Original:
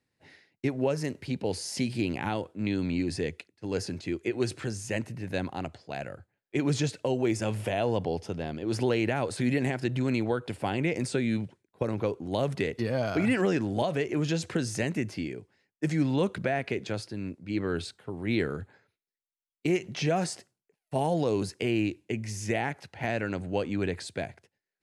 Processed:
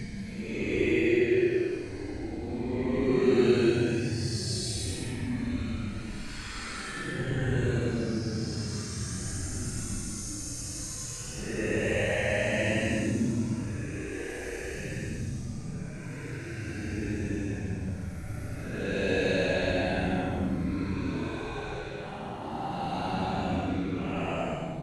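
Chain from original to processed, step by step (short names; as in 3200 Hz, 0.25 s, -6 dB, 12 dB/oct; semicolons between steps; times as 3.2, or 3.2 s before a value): frequency-shifting echo 0.125 s, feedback 64%, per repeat -140 Hz, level -10.5 dB; Paulstretch 17×, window 0.05 s, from 4.22; gain +1.5 dB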